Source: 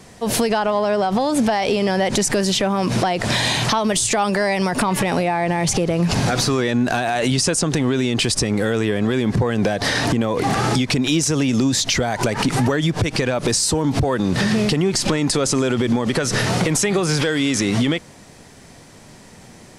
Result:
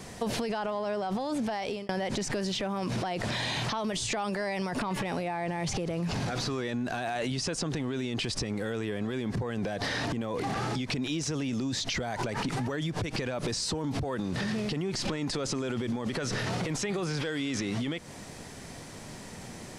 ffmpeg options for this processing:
-filter_complex "[0:a]asplit=2[a][b];[a]atrim=end=1.89,asetpts=PTS-STARTPTS,afade=t=out:st=1.27:d=0.62[c];[b]atrim=start=1.89,asetpts=PTS-STARTPTS,afade=t=in:d=0.004:c=hsin[d];[c][d]concat=n=2:v=0:a=1,acrossover=split=5700[e][f];[f]acompressor=threshold=-38dB:ratio=4:attack=1:release=60[g];[e][g]amix=inputs=2:normalize=0,alimiter=limit=-15dB:level=0:latency=1:release=25,acompressor=threshold=-29dB:ratio=6"

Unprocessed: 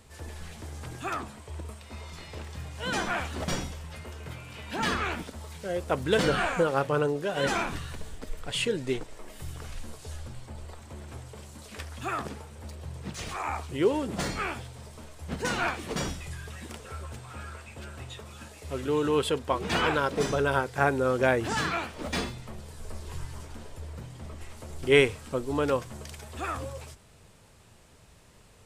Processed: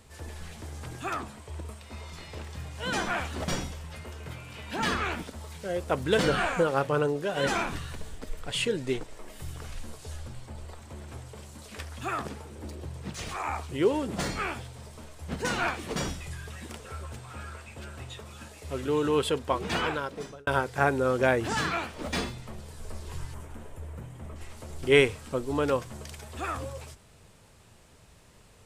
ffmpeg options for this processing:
-filter_complex "[0:a]asettb=1/sr,asplit=3[a][b][c];[a]atrim=end=12.454[d];[b]atrim=start=12.45:end=12.88,asetpts=PTS-STARTPTS,afade=t=in:d=0.004:c=qsin,afade=t=out:st=0.426:d=0.004:c=qsin,equalizer=f=320:t=o:w=0.77:g=12[e];[c]atrim=start=12.876[f];[d][e]acrossfade=d=0.004:c1=hsin:c2=qsin[g];[g][f]acrossfade=d=0.004:c1=qsin:c2=hsin,asettb=1/sr,asplit=3[h][i][j];[h]atrim=end=23.344[k];[i]atrim=start=23.34:end=24.36,asetpts=PTS-STARTPTS,afade=t=in:d=0.004:c=qsin,afade=t=out:st=1.016:d=0.004:c=qsin,equalizer=f=4.7k:w=1.3:g=-11.5[l];[j]atrim=start=24.356[m];[k][l]acrossfade=d=0.004:c1=hsin:c2=qsin[n];[n][m]acrossfade=d=0.004:c1=qsin:c2=hsin,asplit=2[o][p];[o]atrim=end=20.47,asetpts=PTS-STARTPTS,afade=t=out:st=19.56:d=0.91[q];[p]atrim=start=20.47,asetpts=PTS-STARTPTS,afade=t=in:d=0.004:c=hsin[r];[q][r]concat=n=2:v=0:a=1"

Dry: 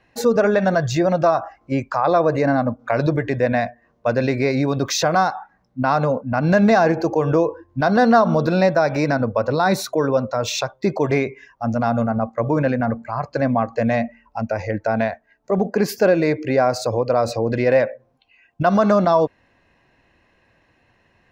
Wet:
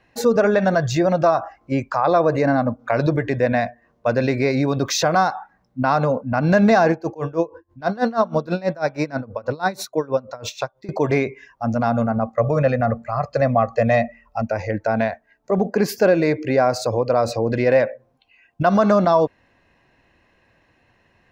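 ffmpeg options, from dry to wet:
-filter_complex "[0:a]asettb=1/sr,asplit=3[a][b][c];[a]atrim=end=6.924[d];[b]atrim=start=6.92:end=10.89,asetpts=PTS-STARTPTS,afade=t=in:d=0.004:c=qsin,afade=t=out:st=3.966:d=0.004:c=qsin,aeval=exprs='val(0)*pow(10,-22*(0.5-0.5*cos(2*PI*6.2*n/s))/20)':c=same[e];[c]atrim=start=10.886[f];[d][e]acrossfade=d=0.004:c1=hsin:c2=qsin[g];[g][f]acrossfade=d=0.004:c1=qsin:c2=hsin,asettb=1/sr,asplit=3[h][i][j];[h]atrim=end=12.334[k];[i]atrim=start=12.33:end=14.42,asetpts=PTS-STARTPTS,afade=t=in:d=0.004:c=qsin,afade=t=out:st=2.086:d=0.004:c=qsin,aecho=1:1:1.6:0.65,atrim=end_sample=92169[l];[j]atrim=start=14.416[m];[k][l]acrossfade=d=0.004:c1=hsin:c2=qsin[n];[n][m]acrossfade=d=0.004:c1=qsin:c2=hsin"

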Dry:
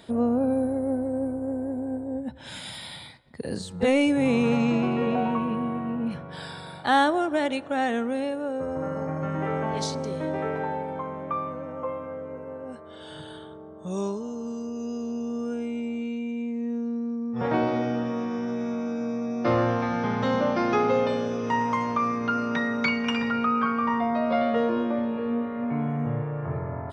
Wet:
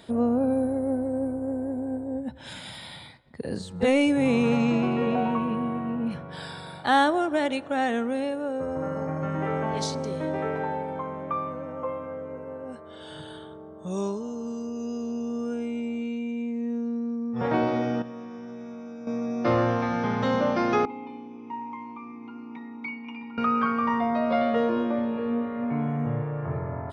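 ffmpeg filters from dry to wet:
-filter_complex "[0:a]asettb=1/sr,asplit=3[a][b][c];[a]atrim=end=2.534[d];[b]atrim=start=2.53:end=3.76,asetpts=PTS-STARTPTS,afade=t=in:d=0.004:c=qsin,afade=t=out:st=1.226:d=0.004:c=qsin,highshelf=f=3.8k:g=-6[e];[c]atrim=start=3.756[f];[d][e]acrossfade=d=0.004:c1=hsin:c2=qsin[g];[g][f]acrossfade=d=0.004:c1=qsin:c2=hsin,asettb=1/sr,asplit=3[h][i][j];[h]atrim=end=20.854[k];[i]atrim=start=20.85:end=23.38,asetpts=PTS-STARTPTS,afade=t=in:d=0.004:c=qsin,afade=t=out:st=2.526:d=0.004:c=qsin,asplit=3[l][m][n];[l]bandpass=f=300:t=q:w=8,volume=0dB[o];[m]bandpass=f=870:t=q:w=8,volume=-6dB[p];[n]bandpass=f=2.24k:t=q:w=8,volume=-9dB[q];[o][p][q]amix=inputs=3:normalize=0[r];[j]atrim=start=23.376[s];[k][r]acrossfade=d=0.004:c1=hsin:c2=qsin[t];[t][s]acrossfade=d=0.004:c1=qsin:c2=hsin,asplit=3[u][v][w];[u]atrim=end=18.022[x];[v]atrim=start=18.018:end=19.072,asetpts=PTS-STARTPTS,volume=-10dB[y];[w]atrim=start=19.068[z];[x][y]acrossfade=d=0.004:c1=hsin:c2=hsin[aa];[aa][z]acrossfade=d=0.004:c1=hsin:c2=hsin"

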